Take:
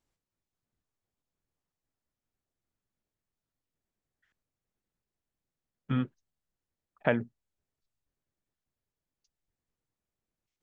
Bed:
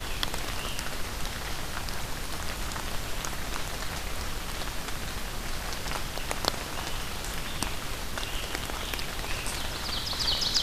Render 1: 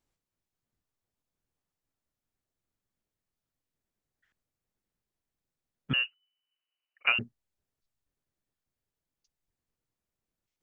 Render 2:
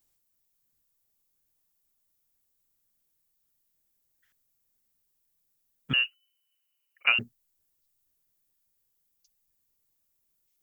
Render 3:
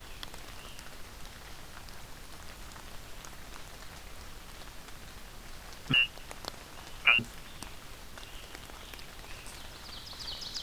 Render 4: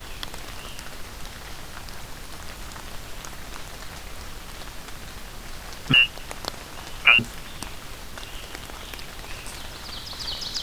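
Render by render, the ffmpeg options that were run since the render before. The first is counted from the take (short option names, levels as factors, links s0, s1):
-filter_complex "[0:a]asettb=1/sr,asplit=3[s0][s1][s2];[s0]atrim=end=5.934[s3];[s1]atrim=start=5.93:end=7.19,asetpts=PTS-STARTPTS,afade=t=in:d=0.004:c=qsin,afade=t=out:st=1.256:d=0.004:c=qsin,lowpass=f=2600:t=q:w=0.5098,lowpass=f=2600:t=q:w=0.6013,lowpass=f=2600:t=q:w=0.9,lowpass=f=2600:t=q:w=2.563,afreqshift=-3000[s4];[s2]atrim=start=7.186[s5];[s3][s4]acrossfade=d=0.004:c1=hsin:c2=qsin[s6];[s6][s5]acrossfade=d=0.004:c1=qsin:c2=hsin"
-af "aemphasis=mode=production:type=75fm"
-filter_complex "[1:a]volume=0.224[s0];[0:a][s0]amix=inputs=2:normalize=0"
-af "volume=2.82,alimiter=limit=0.794:level=0:latency=1"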